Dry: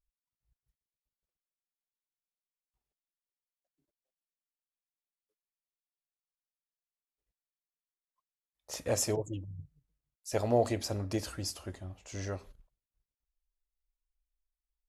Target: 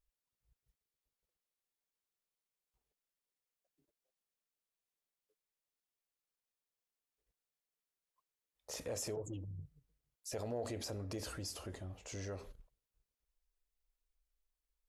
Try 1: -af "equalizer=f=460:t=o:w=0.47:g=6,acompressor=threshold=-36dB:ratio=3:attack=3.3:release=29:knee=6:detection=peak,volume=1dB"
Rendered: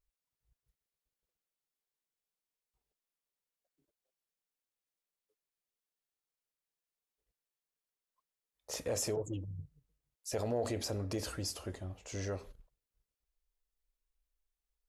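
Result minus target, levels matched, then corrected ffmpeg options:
compressor: peak gain reduction -6 dB
-af "equalizer=f=460:t=o:w=0.47:g=6,acompressor=threshold=-45dB:ratio=3:attack=3.3:release=29:knee=6:detection=peak,volume=1dB"

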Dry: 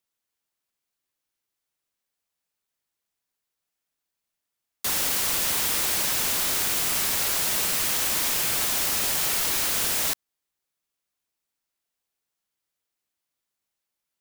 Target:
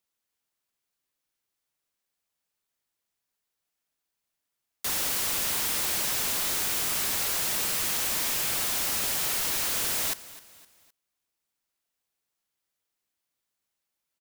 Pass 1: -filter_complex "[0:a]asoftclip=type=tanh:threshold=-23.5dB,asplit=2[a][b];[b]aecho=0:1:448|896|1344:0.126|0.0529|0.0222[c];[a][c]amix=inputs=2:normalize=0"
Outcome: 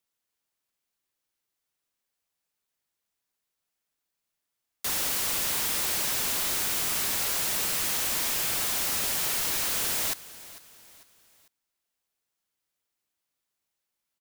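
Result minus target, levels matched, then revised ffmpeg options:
echo 0.191 s late
-filter_complex "[0:a]asoftclip=type=tanh:threshold=-23.5dB,asplit=2[a][b];[b]aecho=0:1:257|514|771:0.126|0.0529|0.0222[c];[a][c]amix=inputs=2:normalize=0"

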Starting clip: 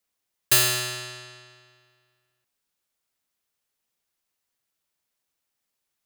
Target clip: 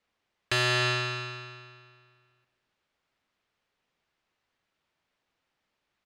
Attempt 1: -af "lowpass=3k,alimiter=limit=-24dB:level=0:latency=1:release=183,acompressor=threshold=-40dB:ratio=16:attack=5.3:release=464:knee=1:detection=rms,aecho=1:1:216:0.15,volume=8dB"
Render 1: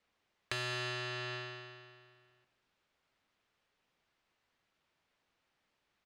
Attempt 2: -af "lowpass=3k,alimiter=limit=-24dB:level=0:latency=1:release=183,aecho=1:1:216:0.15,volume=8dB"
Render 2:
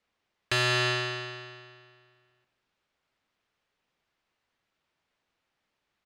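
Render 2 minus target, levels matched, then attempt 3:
echo 91 ms early
-af "lowpass=3k,alimiter=limit=-24dB:level=0:latency=1:release=183,aecho=1:1:307:0.15,volume=8dB"

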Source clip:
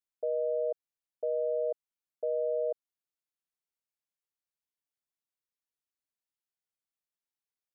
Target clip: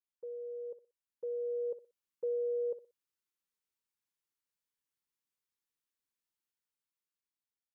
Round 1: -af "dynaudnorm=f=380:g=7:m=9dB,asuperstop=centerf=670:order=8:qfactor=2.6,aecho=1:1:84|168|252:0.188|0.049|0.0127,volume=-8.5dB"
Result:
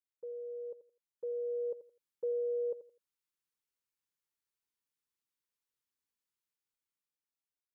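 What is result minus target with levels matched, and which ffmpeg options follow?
echo 23 ms late
-af "dynaudnorm=f=380:g=7:m=9dB,asuperstop=centerf=670:order=8:qfactor=2.6,aecho=1:1:61|122|183:0.188|0.049|0.0127,volume=-8.5dB"

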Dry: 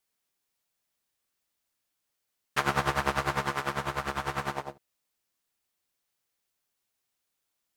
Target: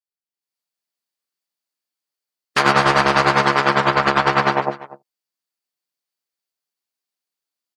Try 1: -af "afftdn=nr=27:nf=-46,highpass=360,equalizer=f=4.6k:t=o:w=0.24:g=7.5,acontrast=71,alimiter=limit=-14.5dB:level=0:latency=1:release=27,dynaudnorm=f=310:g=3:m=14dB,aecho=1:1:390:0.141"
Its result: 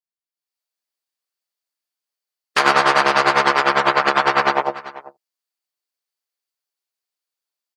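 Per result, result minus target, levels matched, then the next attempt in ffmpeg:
echo 0.145 s late; 125 Hz band -10.5 dB
-af "afftdn=nr=27:nf=-46,highpass=360,equalizer=f=4.6k:t=o:w=0.24:g=7.5,acontrast=71,alimiter=limit=-14.5dB:level=0:latency=1:release=27,dynaudnorm=f=310:g=3:m=14dB,aecho=1:1:245:0.141"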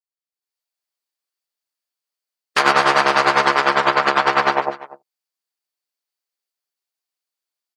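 125 Hz band -11.0 dB
-af "afftdn=nr=27:nf=-46,highpass=170,equalizer=f=4.6k:t=o:w=0.24:g=7.5,acontrast=71,alimiter=limit=-14.5dB:level=0:latency=1:release=27,dynaudnorm=f=310:g=3:m=14dB,aecho=1:1:245:0.141"

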